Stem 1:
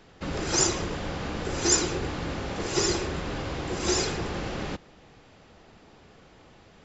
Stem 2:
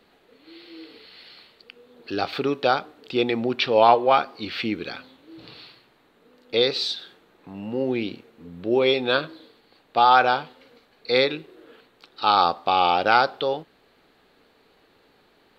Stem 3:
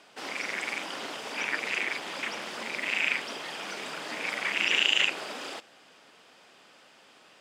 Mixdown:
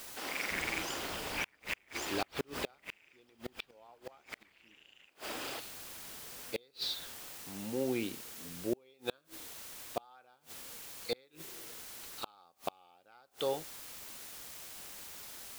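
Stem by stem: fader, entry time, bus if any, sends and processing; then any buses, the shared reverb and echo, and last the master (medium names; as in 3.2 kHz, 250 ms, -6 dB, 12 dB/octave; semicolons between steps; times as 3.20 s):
-9.5 dB, 0.30 s, no send, compression 4:1, threshold -36 dBFS, peak gain reduction 15.5 dB
-9.0 dB, 0.00 s, no send, none
-3.5 dB, 0.00 s, no send, none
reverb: none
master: word length cut 8-bit, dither triangular; inverted gate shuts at -21 dBFS, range -34 dB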